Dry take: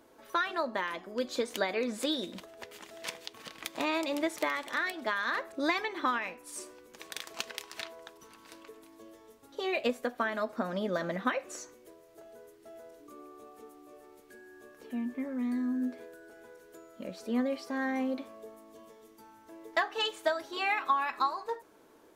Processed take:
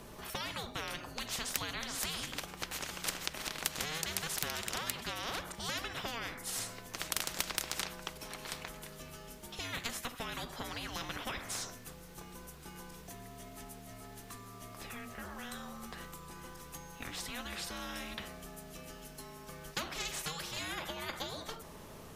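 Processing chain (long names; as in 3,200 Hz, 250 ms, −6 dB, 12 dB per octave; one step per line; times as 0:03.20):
frequency shifter −480 Hz
every bin compressed towards the loudest bin 4 to 1
level +4 dB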